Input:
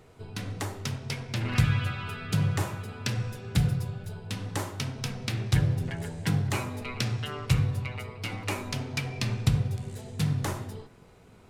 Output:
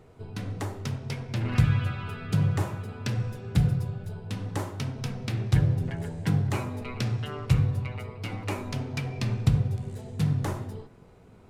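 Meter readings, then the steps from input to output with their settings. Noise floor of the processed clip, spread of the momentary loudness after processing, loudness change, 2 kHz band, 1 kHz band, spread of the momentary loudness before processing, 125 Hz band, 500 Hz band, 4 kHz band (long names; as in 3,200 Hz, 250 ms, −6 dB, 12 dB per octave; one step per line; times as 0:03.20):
−53 dBFS, 11 LU, +1.5 dB, −3.5 dB, −0.5 dB, 10 LU, +2.0 dB, +1.0 dB, −5.0 dB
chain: tilt shelving filter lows +4 dB, about 1,400 Hz
level −2 dB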